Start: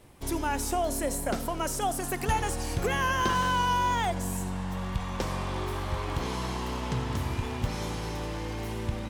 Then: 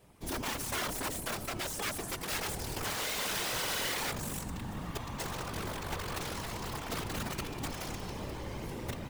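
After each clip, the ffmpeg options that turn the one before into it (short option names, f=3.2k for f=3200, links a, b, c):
-af "acrusher=bits=5:mode=log:mix=0:aa=0.000001,aeval=exprs='(mod(15*val(0)+1,2)-1)/15':c=same,afftfilt=real='hypot(re,im)*cos(2*PI*random(0))':imag='hypot(re,im)*sin(2*PI*random(1))':win_size=512:overlap=0.75"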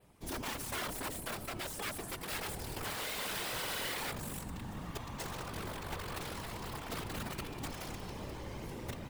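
-af "adynamicequalizer=threshold=0.002:dfrequency=6200:dqfactor=2.2:tfrequency=6200:tqfactor=2.2:attack=5:release=100:ratio=0.375:range=2.5:mode=cutabove:tftype=bell,volume=-3.5dB"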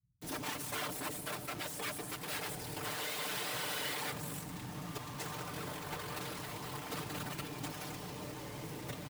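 -filter_complex "[0:a]highpass=82,aecho=1:1:6.7:0.58,acrossover=split=120[a][b];[b]acrusher=bits=7:mix=0:aa=0.000001[c];[a][c]amix=inputs=2:normalize=0,volume=-1.5dB"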